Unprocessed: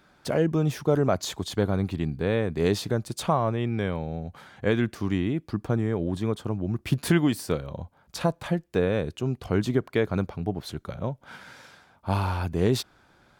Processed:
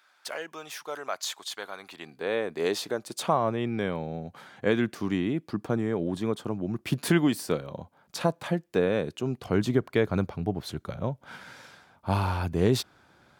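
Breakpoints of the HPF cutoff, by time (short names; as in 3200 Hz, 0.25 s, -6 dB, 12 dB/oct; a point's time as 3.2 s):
1.79 s 1100 Hz
2.36 s 390 Hz
2.99 s 390 Hz
3.46 s 160 Hz
9.29 s 160 Hz
9.83 s 67 Hz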